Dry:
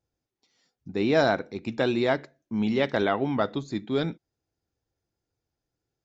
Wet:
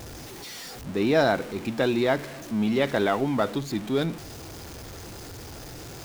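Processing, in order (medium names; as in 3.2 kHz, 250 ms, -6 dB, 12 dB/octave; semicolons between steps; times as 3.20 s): jump at every zero crossing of -33.5 dBFS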